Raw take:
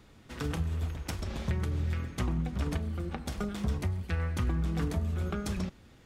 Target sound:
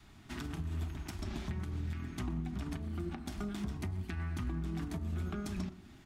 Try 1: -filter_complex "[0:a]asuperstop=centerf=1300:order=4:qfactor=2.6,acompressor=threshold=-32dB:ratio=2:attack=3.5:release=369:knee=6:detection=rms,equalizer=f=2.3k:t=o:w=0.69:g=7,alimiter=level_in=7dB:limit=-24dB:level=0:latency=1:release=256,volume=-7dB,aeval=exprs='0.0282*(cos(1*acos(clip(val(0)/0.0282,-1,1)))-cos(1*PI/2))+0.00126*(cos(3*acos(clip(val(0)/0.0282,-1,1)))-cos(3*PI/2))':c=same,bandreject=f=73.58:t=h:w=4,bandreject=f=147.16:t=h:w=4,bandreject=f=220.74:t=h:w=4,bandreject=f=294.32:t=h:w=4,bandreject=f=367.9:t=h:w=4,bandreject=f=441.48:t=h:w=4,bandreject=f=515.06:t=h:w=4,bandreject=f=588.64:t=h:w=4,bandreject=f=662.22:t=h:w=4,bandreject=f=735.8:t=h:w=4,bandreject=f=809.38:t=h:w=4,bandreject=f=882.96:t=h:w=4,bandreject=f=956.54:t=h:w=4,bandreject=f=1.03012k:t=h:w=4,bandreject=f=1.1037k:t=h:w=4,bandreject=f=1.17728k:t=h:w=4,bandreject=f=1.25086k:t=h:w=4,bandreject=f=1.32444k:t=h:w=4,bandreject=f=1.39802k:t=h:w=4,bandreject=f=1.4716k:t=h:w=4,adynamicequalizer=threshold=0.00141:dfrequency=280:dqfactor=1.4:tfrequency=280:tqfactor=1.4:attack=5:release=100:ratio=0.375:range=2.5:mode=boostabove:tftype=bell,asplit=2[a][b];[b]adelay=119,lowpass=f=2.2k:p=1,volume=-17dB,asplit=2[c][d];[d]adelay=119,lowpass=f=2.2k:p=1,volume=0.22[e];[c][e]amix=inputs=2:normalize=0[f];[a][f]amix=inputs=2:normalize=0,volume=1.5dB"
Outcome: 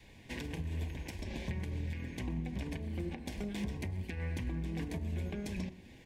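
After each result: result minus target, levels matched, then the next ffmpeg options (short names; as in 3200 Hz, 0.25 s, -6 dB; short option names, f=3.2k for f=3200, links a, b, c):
1000 Hz band -3.0 dB; 2000 Hz band +2.5 dB
-filter_complex "[0:a]asuperstop=centerf=500:order=4:qfactor=2.6,acompressor=threshold=-32dB:ratio=2:attack=3.5:release=369:knee=6:detection=rms,equalizer=f=2.3k:t=o:w=0.69:g=7,alimiter=level_in=7dB:limit=-24dB:level=0:latency=1:release=256,volume=-7dB,aeval=exprs='0.0282*(cos(1*acos(clip(val(0)/0.0282,-1,1)))-cos(1*PI/2))+0.00126*(cos(3*acos(clip(val(0)/0.0282,-1,1)))-cos(3*PI/2))':c=same,bandreject=f=73.58:t=h:w=4,bandreject=f=147.16:t=h:w=4,bandreject=f=220.74:t=h:w=4,bandreject=f=294.32:t=h:w=4,bandreject=f=367.9:t=h:w=4,bandreject=f=441.48:t=h:w=4,bandreject=f=515.06:t=h:w=4,bandreject=f=588.64:t=h:w=4,bandreject=f=662.22:t=h:w=4,bandreject=f=735.8:t=h:w=4,bandreject=f=809.38:t=h:w=4,bandreject=f=882.96:t=h:w=4,bandreject=f=956.54:t=h:w=4,bandreject=f=1.03012k:t=h:w=4,bandreject=f=1.1037k:t=h:w=4,bandreject=f=1.17728k:t=h:w=4,bandreject=f=1.25086k:t=h:w=4,bandreject=f=1.32444k:t=h:w=4,bandreject=f=1.39802k:t=h:w=4,bandreject=f=1.4716k:t=h:w=4,adynamicequalizer=threshold=0.00141:dfrequency=280:dqfactor=1.4:tfrequency=280:tqfactor=1.4:attack=5:release=100:ratio=0.375:range=2.5:mode=boostabove:tftype=bell,asplit=2[a][b];[b]adelay=119,lowpass=f=2.2k:p=1,volume=-17dB,asplit=2[c][d];[d]adelay=119,lowpass=f=2.2k:p=1,volume=0.22[e];[c][e]amix=inputs=2:normalize=0[f];[a][f]amix=inputs=2:normalize=0,volume=1.5dB"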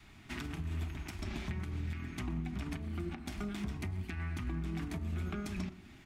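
2000 Hz band +3.5 dB
-filter_complex "[0:a]asuperstop=centerf=500:order=4:qfactor=2.6,acompressor=threshold=-32dB:ratio=2:attack=3.5:release=369:knee=6:detection=rms,alimiter=level_in=7dB:limit=-24dB:level=0:latency=1:release=256,volume=-7dB,aeval=exprs='0.0282*(cos(1*acos(clip(val(0)/0.0282,-1,1)))-cos(1*PI/2))+0.00126*(cos(3*acos(clip(val(0)/0.0282,-1,1)))-cos(3*PI/2))':c=same,bandreject=f=73.58:t=h:w=4,bandreject=f=147.16:t=h:w=4,bandreject=f=220.74:t=h:w=4,bandreject=f=294.32:t=h:w=4,bandreject=f=367.9:t=h:w=4,bandreject=f=441.48:t=h:w=4,bandreject=f=515.06:t=h:w=4,bandreject=f=588.64:t=h:w=4,bandreject=f=662.22:t=h:w=4,bandreject=f=735.8:t=h:w=4,bandreject=f=809.38:t=h:w=4,bandreject=f=882.96:t=h:w=4,bandreject=f=956.54:t=h:w=4,bandreject=f=1.03012k:t=h:w=4,bandreject=f=1.1037k:t=h:w=4,bandreject=f=1.17728k:t=h:w=4,bandreject=f=1.25086k:t=h:w=4,bandreject=f=1.32444k:t=h:w=4,bandreject=f=1.39802k:t=h:w=4,bandreject=f=1.4716k:t=h:w=4,adynamicequalizer=threshold=0.00141:dfrequency=280:dqfactor=1.4:tfrequency=280:tqfactor=1.4:attack=5:release=100:ratio=0.375:range=2.5:mode=boostabove:tftype=bell,asplit=2[a][b];[b]adelay=119,lowpass=f=2.2k:p=1,volume=-17dB,asplit=2[c][d];[d]adelay=119,lowpass=f=2.2k:p=1,volume=0.22[e];[c][e]amix=inputs=2:normalize=0[f];[a][f]amix=inputs=2:normalize=0,volume=1.5dB"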